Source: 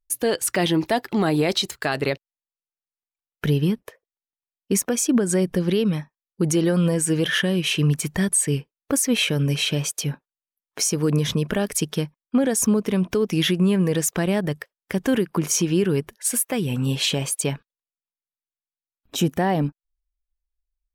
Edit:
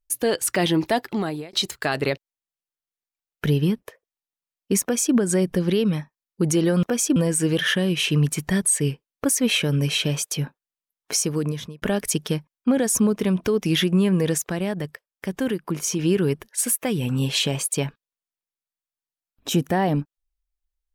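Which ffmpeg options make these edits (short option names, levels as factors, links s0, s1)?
-filter_complex "[0:a]asplit=7[s0][s1][s2][s3][s4][s5][s6];[s0]atrim=end=1.53,asetpts=PTS-STARTPTS,afade=t=out:st=1:d=0.53[s7];[s1]atrim=start=1.53:end=6.832,asetpts=PTS-STARTPTS,afade=t=in:d=0.004:c=hsin[s8];[s2]atrim=start=4.818:end=5.152[s9];[s3]atrim=start=6.828:end=11.49,asetpts=PTS-STARTPTS,afade=t=out:st=4.032:d=0.63[s10];[s4]atrim=start=11.49:end=14.052,asetpts=PTS-STARTPTS,afade=t=in:d=0.004:c=hsin[s11];[s5]atrim=start=14.048:end=15.662,asetpts=PTS-STARTPTS,volume=0.631[s12];[s6]atrim=start=15.658[s13];[s7][s8]concat=n=2:v=0:a=1[s14];[s14][s9]acrossfade=d=0.004:c1=hsin:c2=hsin[s15];[s10][s11]concat=n=2:v=0:a=1[s16];[s15][s16]acrossfade=d=0.004:c1=hsin:c2=hsin[s17];[s17][s12]acrossfade=d=0.004:c1=hsin:c2=hsin[s18];[s18][s13]acrossfade=d=0.004:c1=hsin:c2=hsin"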